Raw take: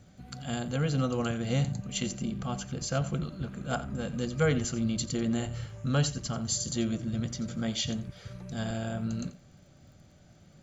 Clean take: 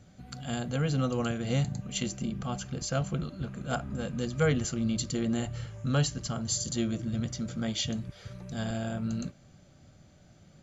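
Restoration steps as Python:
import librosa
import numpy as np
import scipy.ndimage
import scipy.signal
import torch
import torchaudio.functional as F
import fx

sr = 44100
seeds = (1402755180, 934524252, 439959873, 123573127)

y = fx.fix_declick_ar(x, sr, threshold=6.5)
y = fx.fix_echo_inverse(y, sr, delay_ms=87, level_db=-15.5)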